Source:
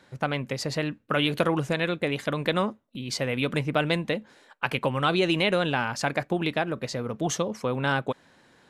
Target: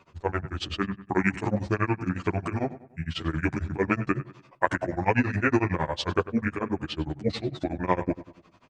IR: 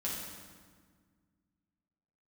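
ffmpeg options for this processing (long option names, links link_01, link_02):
-filter_complex "[0:a]asetrate=28595,aresample=44100,atempo=1.54221,tremolo=f=11:d=0.98,asplit=2[link_01][link_02];[link_02]adelay=97,lowpass=frequency=3200:poles=1,volume=-15dB,asplit=2[link_03][link_04];[link_04]adelay=97,lowpass=frequency=3200:poles=1,volume=0.42,asplit=2[link_05][link_06];[link_06]adelay=97,lowpass=frequency=3200:poles=1,volume=0.42,asplit=2[link_07][link_08];[link_08]adelay=97,lowpass=frequency=3200:poles=1,volume=0.42[link_09];[link_03][link_05][link_07][link_09]amix=inputs=4:normalize=0[link_10];[link_01][link_10]amix=inputs=2:normalize=0,asplit=2[link_11][link_12];[link_12]adelay=10,afreqshift=-0.31[link_13];[link_11][link_13]amix=inputs=2:normalize=1,volume=6.5dB"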